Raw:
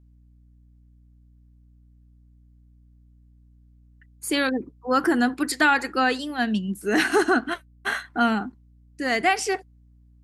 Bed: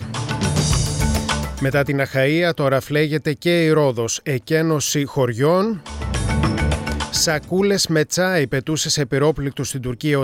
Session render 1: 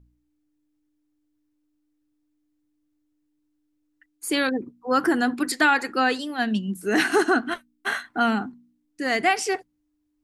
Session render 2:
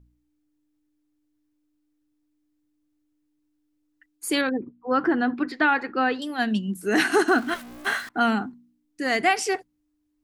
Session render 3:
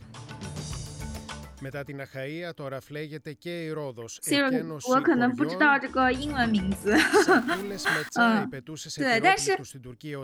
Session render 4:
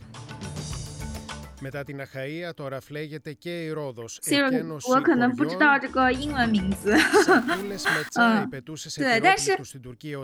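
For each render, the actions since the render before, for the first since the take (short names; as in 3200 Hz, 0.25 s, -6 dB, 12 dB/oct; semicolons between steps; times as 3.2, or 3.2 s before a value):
de-hum 60 Hz, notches 4
4.41–6.22 air absorption 300 m; 7.28–8.09 zero-crossing step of -36 dBFS
add bed -18 dB
gain +2 dB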